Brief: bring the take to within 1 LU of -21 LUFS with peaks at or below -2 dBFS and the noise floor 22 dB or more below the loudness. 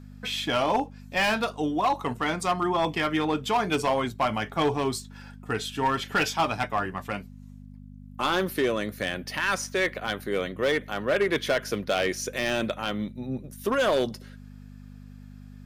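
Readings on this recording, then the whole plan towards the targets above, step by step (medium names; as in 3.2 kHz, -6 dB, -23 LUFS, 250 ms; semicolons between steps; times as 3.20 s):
clipped samples 1.3%; clipping level -18.0 dBFS; hum 50 Hz; highest harmonic 250 Hz; hum level -43 dBFS; loudness -27.0 LUFS; peak level -18.0 dBFS; loudness target -21.0 LUFS
-> clip repair -18 dBFS; de-hum 50 Hz, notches 5; trim +6 dB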